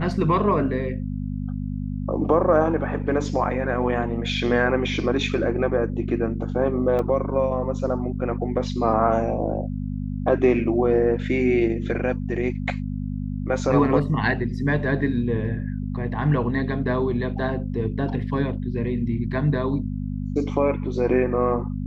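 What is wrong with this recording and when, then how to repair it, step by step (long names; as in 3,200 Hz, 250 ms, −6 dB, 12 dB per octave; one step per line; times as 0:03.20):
mains hum 50 Hz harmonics 5 −28 dBFS
0:06.99: drop-out 2.8 ms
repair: hum removal 50 Hz, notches 5
repair the gap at 0:06.99, 2.8 ms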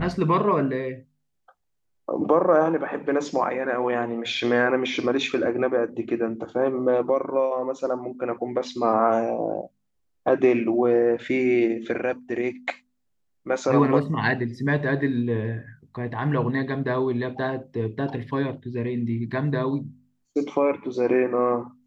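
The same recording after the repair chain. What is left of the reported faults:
none of them is left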